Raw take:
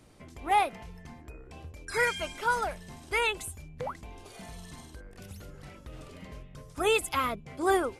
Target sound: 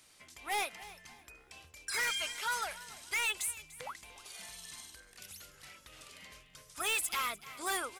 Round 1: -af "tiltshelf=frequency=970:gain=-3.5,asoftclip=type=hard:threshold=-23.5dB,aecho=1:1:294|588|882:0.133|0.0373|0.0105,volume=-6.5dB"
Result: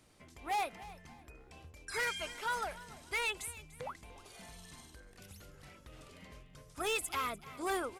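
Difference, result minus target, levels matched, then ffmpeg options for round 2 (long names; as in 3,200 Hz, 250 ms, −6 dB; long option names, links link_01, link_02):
1,000 Hz band +3.0 dB
-af "tiltshelf=frequency=970:gain=-12.5,asoftclip=type=hard:threshold=-23.5dB,aecho=1:1:294|588|882:0.133|0.0373|0.0105,volume=-6.5dB"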